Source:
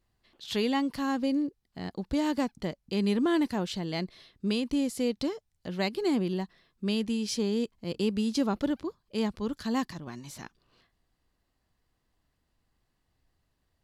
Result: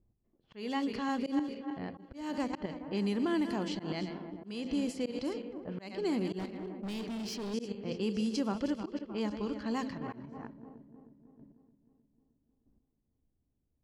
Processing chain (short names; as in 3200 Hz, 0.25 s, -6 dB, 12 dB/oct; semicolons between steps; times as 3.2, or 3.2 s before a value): regenerating reverse delay 0.155 s, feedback 78%, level -12 dB; Bessel low-pass 10000 Hz; low shelf 100 Hz -4 dB; notch 3700 Hz, Q 6.6; de-hum 87.64 Hz, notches 7; in parallel at +2.5 dB: limiter -25 dBFS, peak gain reduction 9 dB; on the sum: low-pass opened by the level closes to 340 Hz, open at -19.5 dBFS; 6.39–7.54 hard clip -26.5 dBFS, distortion -16 dB; chopper 0.79 Hz, depth 65%, duty 10%; auto swell 0.239 s